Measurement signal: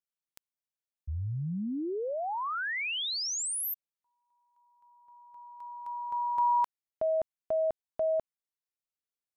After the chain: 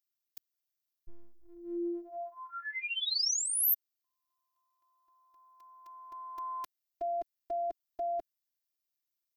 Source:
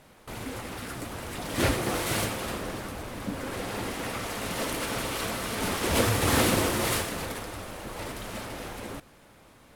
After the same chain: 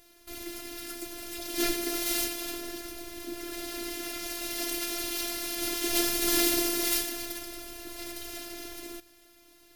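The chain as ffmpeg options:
-af "equalizer=f=125:t=o:w=1:g=-8,equalizer=f=250:t=o:w=1:g=3,equalizer=f=1k:t=o:w=1:g=-10,equalizer=f=4k:t=o:w=1:g=6,equalizer=f=8k:t=o:w=1:g=-6,aexciter=amount=3.6:drive=2.2:freq=5.2k,afftfilt=real='hypot(re,im)*cos(PI*b)':imag='0':win_size=512:overlap=0.75"

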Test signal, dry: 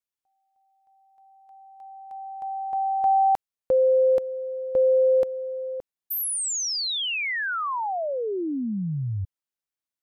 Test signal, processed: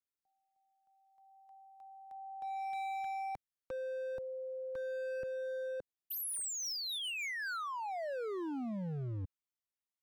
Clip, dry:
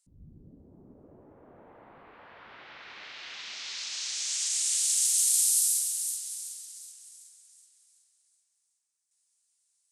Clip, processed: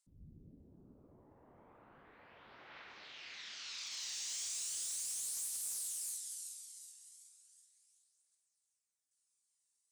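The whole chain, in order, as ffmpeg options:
-filter_complex "[0:a]acrossover=split=150[a][b];[b]acompressor=threshold=-25dB:ratio=10:attack=0.39:release=26:knee=2.83:detection=peak[c];[a][c]amix=inputs=2:normalize=0,aphaser=in_gain=1:out_gain=1:delay=1.1:decay=0.32:speed=0.36:type=triangular,volume=29dB,asoftclip=hard,volume=-29dB,volume=-8.5dB"

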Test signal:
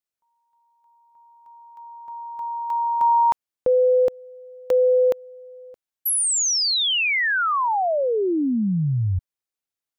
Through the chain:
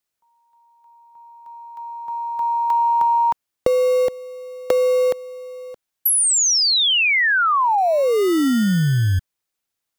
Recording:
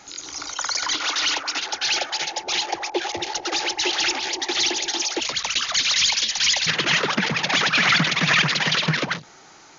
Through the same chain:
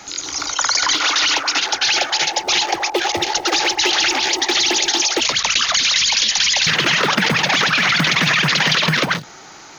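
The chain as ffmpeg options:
-filter_complex "[0:a]acrossover=split=360|1400[a][b][c];[a]acrusher=samples=27:mix=1:aa=0.000001[d];[d][b][c]amix=inputs=3:normalize=0,acompressor=threshold=-27dB:ratio=10:attack=25:release=23:knee=1:detection=peak,volume=8.5dB"

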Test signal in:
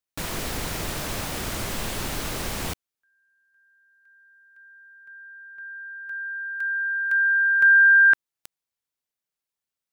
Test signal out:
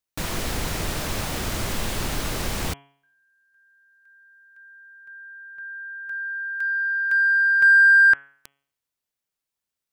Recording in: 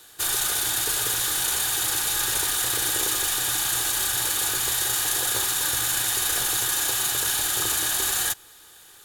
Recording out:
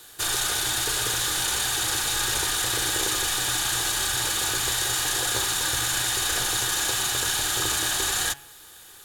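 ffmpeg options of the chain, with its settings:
-filter_complex "[0:a]lowshelf=f=130:g=3.5,acrossover=split=8700[a][b];[b]acompressor=threshold=-36dB:ratio=4:attack=1:release=60[c];[a][c]amix=inputs=2:normalize=0,bandreject=f=139.7:t=h:w=4,bandreject=f=279.4:t=h:w=4,bandreject=f=419.1:t=h:w=4,bandreject=f=558.8:t=h:w=4,bandreject=f=698.5:t=h:w=4,bandreject=f=838.2:t=h:w=4,bandreject=f=977.9:t=h:w=4,bandreject=f=1.1176k:t=h:w=4,bandreject=f=1.2573k:t=h:w=4,bandreject=f=1.397k:t=h:w=4,bandreject=f=1.5367k:t=h:w=4,bandreject=f=1.6764k:t=h:w=4,bandreject=f=1.8161k:t=h:w=4,bandreject=f=1.9558k:t=h:w=4,bandreject=f=2.0955k:t=h:w=4,bandreject=f=2.2352k:t=h:w=4,bandreject=f=2.3749k:t=h:w=4,bandreject=f=2.5146k:t=h:w=4,bandreject=f=2.6543k:t=h:w=4,bandreject=f=2.794k:t=h:w=4,bandreject=f=2.9337k:t=h:w=4,bandreject=f=3.0734k:t=h:w=4,bandreject=f=3.2131k:t=h:w=4,bandreject=f=3.3528k:t=h:w=4,asplit=2[d][e];[e]asoftclip=type=tanh:threshold=-21.5dB,volume=-11dB[f];[d][f]amix=inputs=2:normalize=0"

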